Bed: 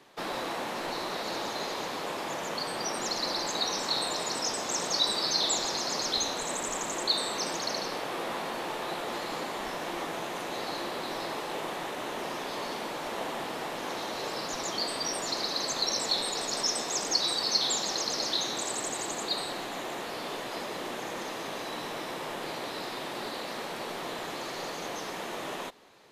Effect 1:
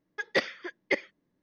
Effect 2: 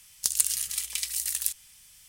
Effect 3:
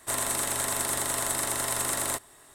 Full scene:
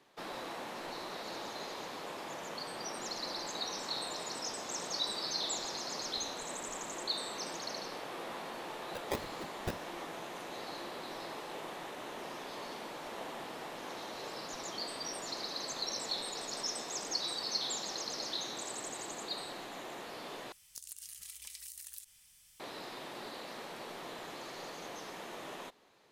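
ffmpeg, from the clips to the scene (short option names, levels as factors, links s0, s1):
-filter_complex "[0:a]volume=0.376[s0];[1:a]acrusher=samples=32:mix=1:aa=0.000001:lfo=1:lforange=19.2:lforate=1.4[s1];[2:a]acompressor=threshold=0.0178:ratio=6:attack=3.2:release=140:knee=1:detection=peak[s2];[s0]asplit=2[s3][s4];[s3]atrim=end=20.524[s5];[s2]atrim=end=2.08,asetpts=PTS-STARTPTS,volume=0.376[s6];[s4]atrim=start=22.596[s7];[s1]atrim=end=1.42,asetpts=PTS-STARTPTS,volume=0.335,afade=t=in:d=0.004:c=hsin,afade=t=out:st=1.416:d=0.004:c=hsin,adelay=8760[s8];[s5][s6]acrossfade=d=0.004:c1=hsin:c2=hsin[s9];[s9][s7]acrossfade=d=0.004:c1=hsin:c2=hsin[s10];[s10][s8]amix=inputs=2:normalize=0"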